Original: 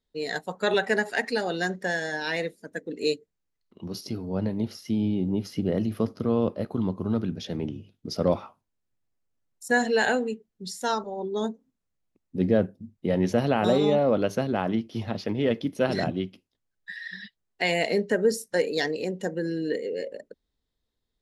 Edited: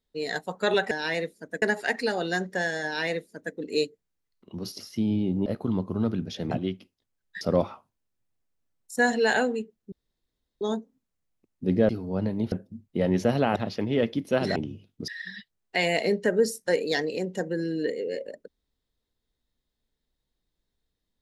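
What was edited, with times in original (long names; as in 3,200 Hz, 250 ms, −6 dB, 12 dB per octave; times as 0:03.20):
0:02.13–0:02.84: duplicate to 0:00.91
0:04.09–0:04.72: move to 0:12.61
0:05.38–0:06.56: remove
0:07.61–0:08.13: swap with 0:16.04–0:16.94
0:10.64–0:11.33: fill with room tone
0:13.65–0:15.04: remove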